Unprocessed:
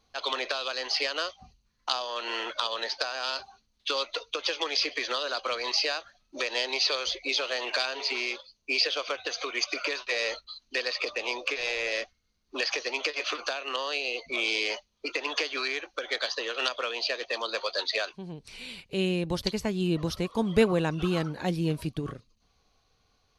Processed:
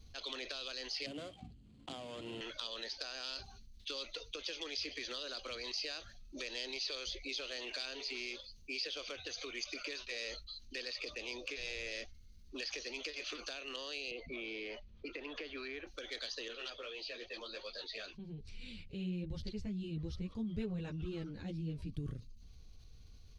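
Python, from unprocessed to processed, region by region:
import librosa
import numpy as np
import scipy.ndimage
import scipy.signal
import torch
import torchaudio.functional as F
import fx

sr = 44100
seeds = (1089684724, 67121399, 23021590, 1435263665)

y = fx.chain(x, sr, fx.median_filter(points=25),
    fx.cabinet(low_hz=130.0, low_slope=12, high_hz=8600.0, hz=(290.0, 710.0, 3200.0, 5800.0), db=(10, 5, 8, -9)),
    fx.band_squash(depth_pct=40), at=(1.06, 2.41))
y = fx.chain(y, sr, fx.lowpass(hz=2000.0, slope=12),
    fx.band_squash(depth_pct=70), at=(14.11, 15.87))
y = fx.chain(y, sr, fx.air_absorb(metres=110.0),
    fx.ensemble(), at=(16.48, 21.94))
y = fx.tone_stack(y, sr, knobs='10-0-1')
y = fx.env_flatten(y, sr, amount_pct=50)
y = y * 10.0 ** (5.0 / 20.0)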